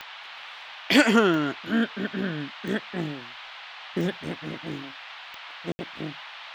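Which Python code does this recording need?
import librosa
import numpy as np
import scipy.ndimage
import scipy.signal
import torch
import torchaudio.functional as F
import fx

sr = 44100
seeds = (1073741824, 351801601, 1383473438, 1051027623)

y = fx.fix_declick_ar(x, sr, threshold=10.0)
y = fx.fix_ambience(y, sr, seeds[0], print_start_s=3.33, print_end_s=3.83, start_s=5.72, end_s=5.79)
y = fx.noise_reduce(y, sr, print_start_s=4.91, print_end_s=5.41, reduce_db=28.0)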